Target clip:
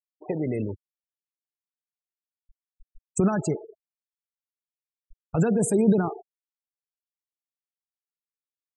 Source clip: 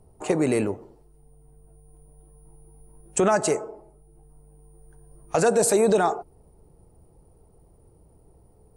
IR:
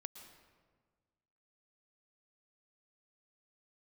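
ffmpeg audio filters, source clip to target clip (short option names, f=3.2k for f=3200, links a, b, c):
-filter_complex "[0:a]asettb=1/sr,asplit=3[a][b][c];[a]atrim=end=3.404[d];[b]atrim=start=3.4:end=5.61,asetpts=PTS-STARTPTS,afade=t=in:d=0.004:c=qsin,afade=t=out:st=2.206:d=0.004:c=qsin,acrossover=split=9800[e][f];[f]acompressor=threshold=-56dB:ratio=4:attack=1:release=60[g];[e][g]amix=inputs=2:normalize=0[h];[c]atrim=start=5.606[i];[d][h]acrossfade=d=0.004:c1=hsin:c2=qsin[j];[j][i]acrossfade=d=0.004:c1=qsin:c2=hsin,afftfilt=real='re*gte(hypot(re,im),0.0708)':imag='im*gte(hypot(re,im),0.0708)':win_size=1024:overlap=0.75,asubboost=boost=9:cutoff=210,volume=-5.5dB"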